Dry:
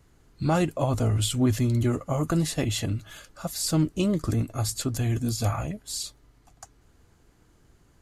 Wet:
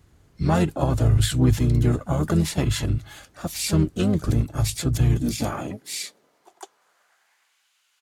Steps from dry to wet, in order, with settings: high-pass sweep 75 Hz -> 2700 Hz, 4.65–7.66; harmoniser -12 st -5 dB, +4 st -8 dB

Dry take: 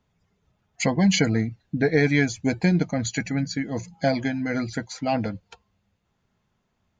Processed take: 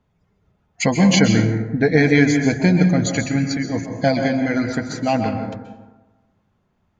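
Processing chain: plate-style reverb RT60 1.2 s, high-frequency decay 0.45×, pre-delay 0.115 s, DRR 4.5 dB; mismatched tape noise reduction decoder only; gain +4.5 dB

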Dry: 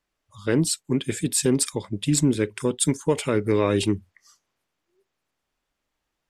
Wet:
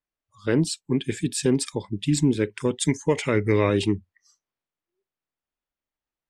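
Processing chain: 2.65–3.7 thirty-one-band EQ 100 Hz +5 dB, 2000 Hz +10 dB, 6300 Hz +7 dB; spectral noise reduction 13 dB; air absorption 61 m

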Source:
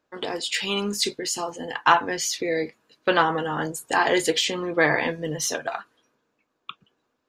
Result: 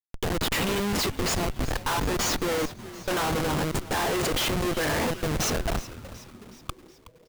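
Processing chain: Schmitt trigger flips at -27.5 dBFS; frequency-shifting echo 0.37 s, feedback 56%, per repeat -130 Hz, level -15.5 dB

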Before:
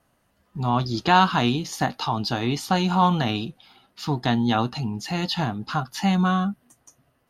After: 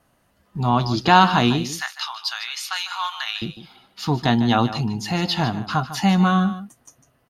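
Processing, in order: 1.71–3.42 HPF 1300 Hz 24 dB/oct; echo 0.151 s -13 dB; gain +3.5 dB

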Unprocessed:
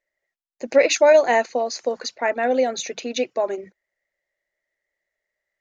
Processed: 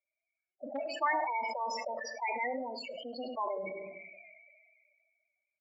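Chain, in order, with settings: compressor 16:1, threshold -22 dBFS, peak gain reduction 13.5 dB; formant shift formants +3 st; loudest bins only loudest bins 8; hard clip -15.5 dBFS, distortion -40 dB; speaker cabinet 410–3200 Hz, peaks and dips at 440 Hz -9 dB, 740 Hz -10 dB, 1200 Hz +8 dB, 1800 Hz +7 dB, 2800 Hz -9 dB; echo 0.1 s -19 dB; shoebox room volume 530 m³, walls furnished, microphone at 0.46 m; sustainer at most 27 dB/s; gain -5 dB

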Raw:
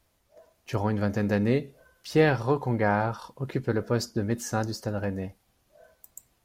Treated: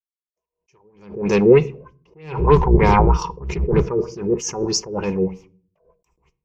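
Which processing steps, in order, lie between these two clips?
2.39–3.82 octaver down 1 oct, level +4 dB; gate -55 dBFS, range -59 dB; ripple EQ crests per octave 0.76, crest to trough 16 dB; in parallel at -4 dB: overloaded stage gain 27 dB; on the sum: LFO low-pass sine 3.2 Hz 400–6200 Hz; on a send at -19 dB: reverb RT60 0.50 s, pre-delay 3 ms; on the sum: attack slew limiter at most 110 dB/s; gain +5.5 dB

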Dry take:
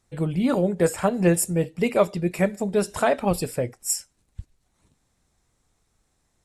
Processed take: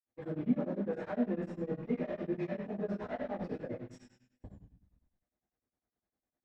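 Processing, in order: HPF 43 Hz 6 dB/oct; gate -40 dBFS, range -7 dB; fifteen-band EQ 630 Hz +11 dB, 1600 Hz +5 dB, 6300 Hz +5 dB; treble ducked by the level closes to 2400 Hz, closed at -21 dBFS; sample leveller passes 3; limiter -22.5 dBFS, peak gain reduction 24.5 dB; tape spacing loss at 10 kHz 20 dB; reverb RT60 0.65 s, pre-delay 47 ms; beating tremolo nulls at 9.9 Hz; gain +2.5 dB

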